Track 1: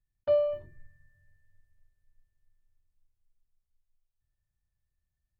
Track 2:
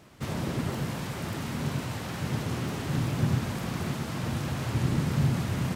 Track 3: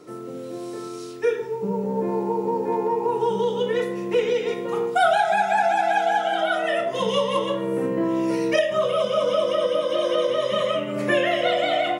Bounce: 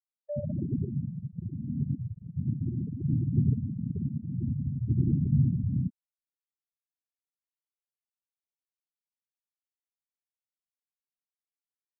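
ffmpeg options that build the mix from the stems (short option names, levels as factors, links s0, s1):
-filter_complex "[0:a]volume=0.282[s0];[1:a]lowpass=f=1800:w=0.5412,lowpass=f=1800:w=1.3066,adelay=150,volume=1.19[s1];[2:a]highpass=f=530:w=0.5412,highpass=f=530:w=1.3066,acompressor=threshold=0.0501:ratio=6,aeval=exprs='val(0)+0.00631*(sin(2*PI*50*n/s)+sin(2*PI*2*50*n/s)/2+sin(2*PI*3*50*n/s)/3+sin(2*PI*4*50*n/s)/4+sin(2*PI*5*50*n/s)/5)':c=same,adelay=300,volume=0.133[s2];[s0][s1][s2]amix=inputs=3:normalize=0,afftfilt=real='re*gte(hypot(re,im),0.141)':imag='im*gte(hypot(re,im),0.141)':win_size=1024:overlap=0.75,agate=range=0.0224:threshold=0.0178:ratio=3:detection=peak"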